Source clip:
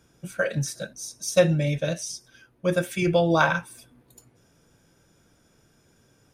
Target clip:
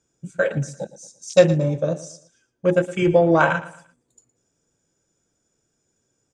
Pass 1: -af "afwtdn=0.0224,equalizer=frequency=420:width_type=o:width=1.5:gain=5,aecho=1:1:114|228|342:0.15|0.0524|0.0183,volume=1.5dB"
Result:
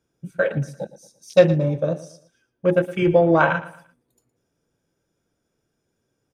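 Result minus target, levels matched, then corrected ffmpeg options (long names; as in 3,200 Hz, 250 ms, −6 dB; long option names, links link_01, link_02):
8,000 Hz band −9.5 dB
-af "afwtdn=0.0224,lowpass=frequency=7400:width_type=q:width=7.3,equalizer=frequency=420:width_type=o:width=1.5:gain=5,aecho=1:1:114|228|342:0.15|0.0524|0.0183,volume=1.5dB"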